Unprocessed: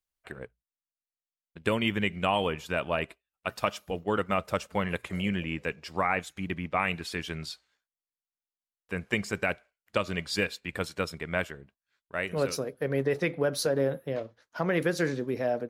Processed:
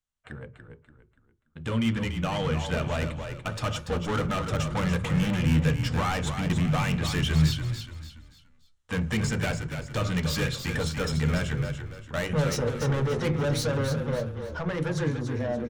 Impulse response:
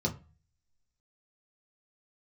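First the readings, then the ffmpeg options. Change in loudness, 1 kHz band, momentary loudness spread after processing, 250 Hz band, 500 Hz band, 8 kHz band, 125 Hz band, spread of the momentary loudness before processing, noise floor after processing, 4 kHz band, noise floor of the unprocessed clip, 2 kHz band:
+3.0 dB, −1.0 dB, 9 LU, +5.0 dB, −1.0 dB, +5.0 dB, +11.5 dB, 11 LU, −63 dBFS, +3.0 dB, below −85 dBFS, −1.0 dB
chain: -filter_complex "[0:a]lowpass=frequency=9000:width=0.5412,lowpass=frequency=9000:width=1.3066,alimiter=limit=-17.5dB:level=0:latency=1:release=324,dynaudnorm=framelen=520:gausssize=11:maxgain=12.5dB,asoftclip=type=tanh:threshold=-25.5dB,asplit=5[link_01][link_02][link_03][link_04][link_05];[link_02]adelay=288,afreqshift=-37,volume=-7.5dB[link_06];[link_03]adelay=576,afreqshift=-74,volume=-16.1dB[link_07];[link_04]adelay=864,afreqshift=-111,volume=-24.8dB[link_08];[link_05]adelay=1152,afreqshift=-148,volume=-33.4dB[link_09];[link_01][link_06][link_07][link_08][link_09]amix=inputs=5:normalize=0,asplit=2[link_10][link_11];[1:a]atrim=start_sample=2205,lowshelf=frequency=76:gain=11.5[link_12];[link_11][link_12]afir=irnorm=-1:irlink=0,volume=-13.5dB[link_13];[link_10][link_13]amix=inputs=2:normalize=0"

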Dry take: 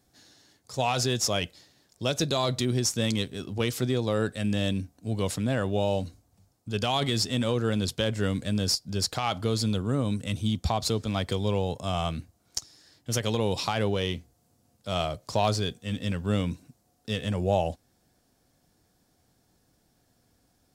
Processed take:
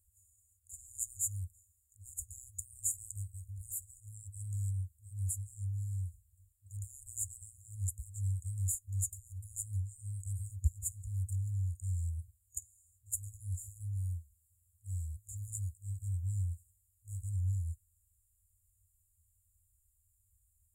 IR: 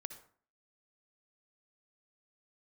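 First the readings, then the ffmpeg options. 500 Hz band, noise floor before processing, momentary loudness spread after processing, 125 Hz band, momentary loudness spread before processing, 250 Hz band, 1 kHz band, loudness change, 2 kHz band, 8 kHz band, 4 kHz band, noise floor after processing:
below −40 dB, −69 dBFS, 11 LU, −6.5 dB, 8 LU, below −35 dB, below −40 dB, −11.0 dB, below −40 dB, −3.5 dB, below −40 dB, −75 dBFS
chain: -af "afftfilt=real='re*(1-between(b*sr/4096,100,6800))':imag='im*(1-between(b*sr/4096,100,6800))':win_size=4096:overlap=0.75"

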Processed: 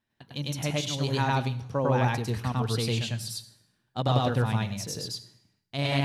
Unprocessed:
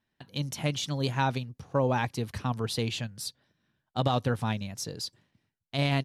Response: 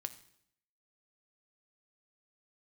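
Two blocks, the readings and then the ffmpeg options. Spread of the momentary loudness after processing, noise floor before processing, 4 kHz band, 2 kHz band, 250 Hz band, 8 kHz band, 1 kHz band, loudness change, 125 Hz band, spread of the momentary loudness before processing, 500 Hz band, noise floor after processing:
11 LU, −82 dBFS, +2.0 dB, +1.5 dB, +1.5 dB, +2.0 dB, +1.5 dB, +2.5 dB, +3.5 dB, 10 LU, +1.5 dB, −77 dBFS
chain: -filter_complex "[0:a]asplit=2[link_01][link_02];[1:a]atrim=start_sample=2205,adelay=101[link_03];[link_02][link_03]afir=irnorm=-1:irlink=0,volume=4dB[link_04];[link_01][link_04]amix=inputs=2:normalize=0,volume=-2dB"

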